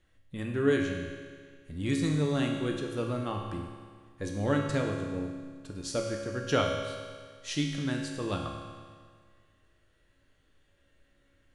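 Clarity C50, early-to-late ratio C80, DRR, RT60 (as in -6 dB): 3.0 dB, 4.5 dB, 0.5 dB, 1.8 s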